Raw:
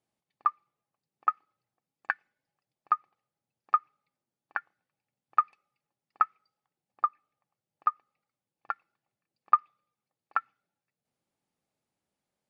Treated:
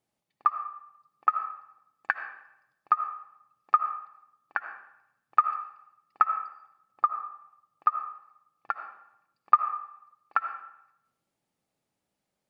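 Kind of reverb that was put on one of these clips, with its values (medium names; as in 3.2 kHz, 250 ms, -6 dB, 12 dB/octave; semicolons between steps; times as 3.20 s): algorithmic reverb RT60 0.81 s, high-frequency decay 0.8×, pre-delay 40 ms, DRR 7.5 dB; trim +2.5 dB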